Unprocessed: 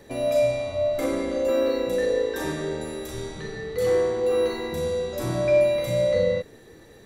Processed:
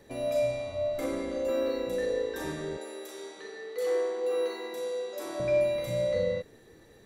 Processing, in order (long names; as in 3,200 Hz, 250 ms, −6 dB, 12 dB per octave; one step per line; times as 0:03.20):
0:02.77–0:05.40: high-pass filter 330 Hz 24 dB per octave
level −6.5 dB